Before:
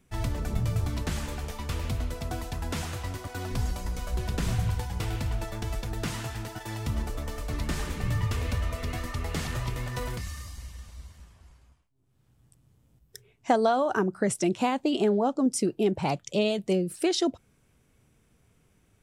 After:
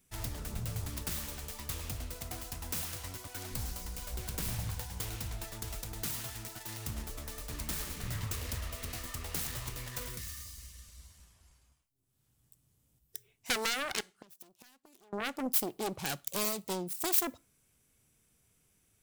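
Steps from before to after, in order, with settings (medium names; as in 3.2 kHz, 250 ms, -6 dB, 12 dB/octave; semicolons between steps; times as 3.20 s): self-modulated delay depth 0.92 ms; 14.00–15.13 s: inverted gate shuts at -21 dBFS, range -28 dB; pre-emphasis filter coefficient 0.8; reverberation RT60 0.35 s, pre-delay 7 ms, DRR 21.5 dB; saturation -17.5 dBFS, distortion -22 dB; 9.99–11.00 s: peaking EQ 820 Hz -15 dB 0.28 oct; trim +3.5 dB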